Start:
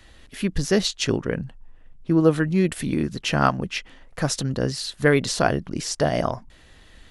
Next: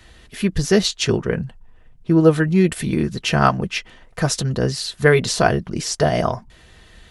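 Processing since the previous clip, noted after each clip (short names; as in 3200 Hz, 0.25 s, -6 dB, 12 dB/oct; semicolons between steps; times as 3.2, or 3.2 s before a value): notch comb 280 Hz; gain +5 dB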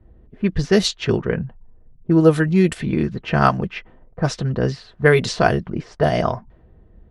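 low-pass opened by the level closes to 420 Hz, open at -11.5 dBFS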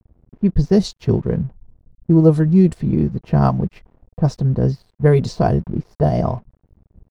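band shelf 2100 Hz -11.5 dB; crossover distortion -47 dBFS; tone controls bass +8 dB, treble -7 dB; gain -1.5 dB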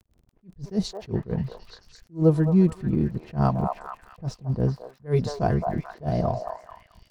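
crackle 48/s -38 dBFS; delay with a stepping band-pass 0.218 s, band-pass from 850 Hz, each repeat 0.7 oct, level -2 dB; attack slew limiter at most 280 dB/s; gain -6 dB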